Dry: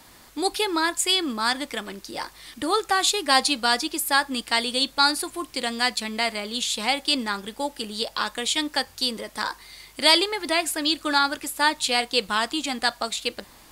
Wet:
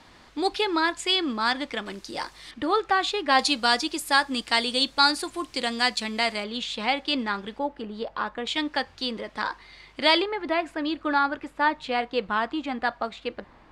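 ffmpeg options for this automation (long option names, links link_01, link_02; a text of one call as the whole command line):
ffmpeg -i in.wav -af "asetnsamples=nb_out_samples=441:pad=0,asendcmd='1.86 lowpass f 7400;2.51 lowpass f 2900;3.39 lowpass f 7100;6.44 lowpass f 3100;7.59 lowpass f 1500;8.47 lowpass f 3100;10.22 lowpass f 1800',lowpass=4200" out.wav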